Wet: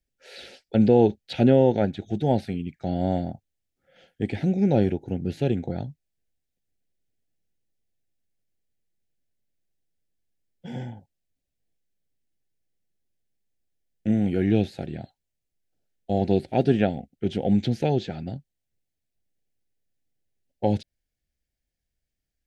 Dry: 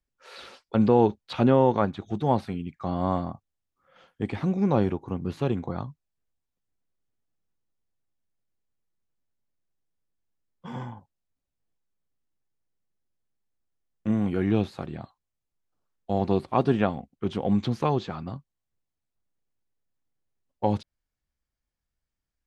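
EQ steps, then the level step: Butterworth band-stop 1100 Hz, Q 1.3; +2.5 dB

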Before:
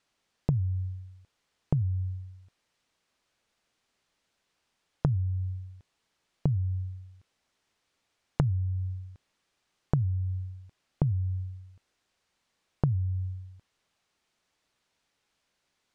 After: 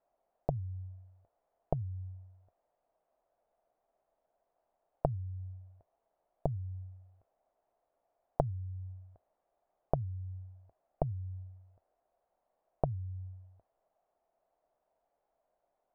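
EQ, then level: synth low-pass 670 Hz, resonance Q 4.9; bell 80 Hz -9.5 dB 0.34 oct; bell 170 Hz -12 dB 2.9 oct; +1.5 dB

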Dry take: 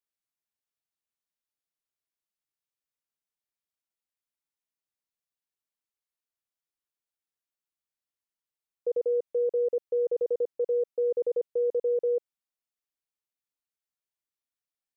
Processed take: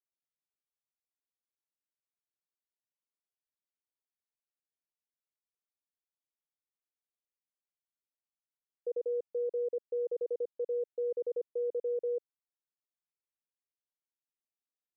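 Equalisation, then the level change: band-pass 400 Hz, Q 0.75; -6.5 dB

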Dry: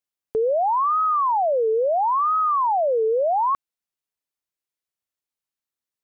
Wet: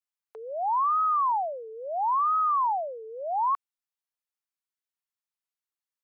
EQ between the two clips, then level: ladder high-pass 690 Hz, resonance 25%; 0.0 dB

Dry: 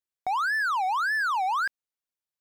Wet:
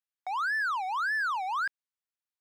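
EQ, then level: HPF 920 Hz 12 dB/oct; high shelf 5400 Hz -7.5 dB; -2.0 dB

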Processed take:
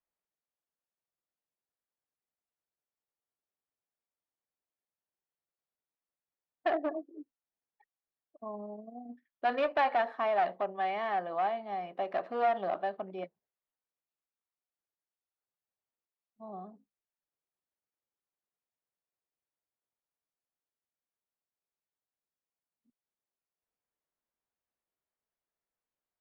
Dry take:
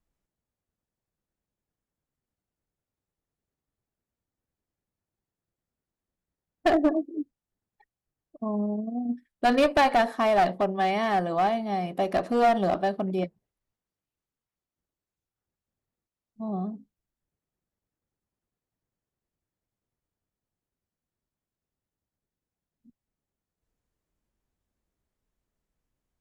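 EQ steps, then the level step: three-band isolator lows -12 dB, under 460 Hz, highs -22 dB, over 4000 Hz; low shelf 110 Hz -11 dB; high shelf 4200 Hz -9.5 dB; -5.0 dB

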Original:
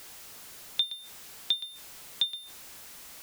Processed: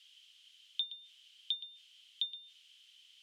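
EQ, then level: ladder band-pass 3200 Hz, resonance 85%; -4.0 dB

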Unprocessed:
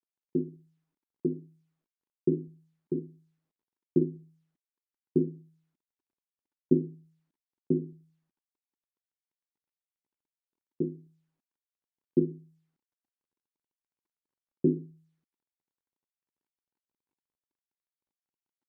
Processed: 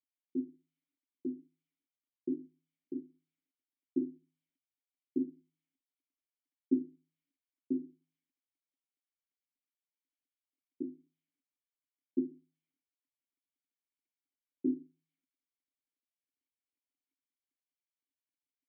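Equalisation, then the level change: vowel filter i; HPF 190 Hz 12 dB/oct; low shelf 250 Hz -12 dB; +6.0 dB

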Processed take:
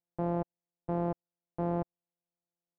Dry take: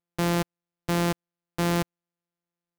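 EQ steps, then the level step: synth low-pass 730 Hz, resonance Q 1.8; -8.0 dB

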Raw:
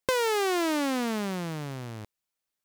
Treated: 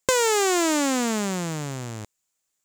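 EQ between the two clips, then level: bell 7200 Hz +13.5 dB 0.43 oct; +4.5 dB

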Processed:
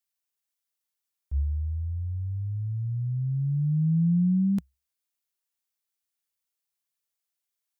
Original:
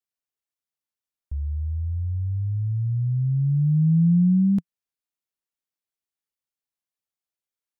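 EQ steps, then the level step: tilt +2 dB/oct; bell 66 Hz +13.5 dB 0.35 oct; 0.0 dB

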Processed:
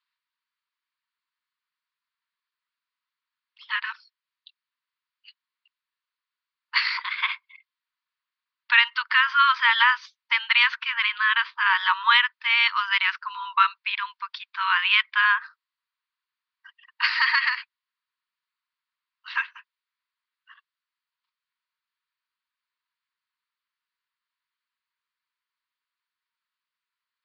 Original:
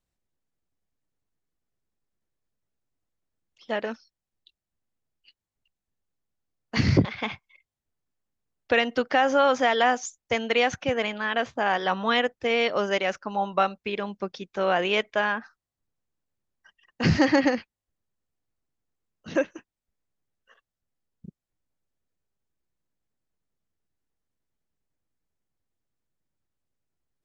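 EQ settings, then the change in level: brick-wall FIR high-pass 910 Hz; elliptic low-pass 4600 Hz, stop band 40 dB; +8.0 dB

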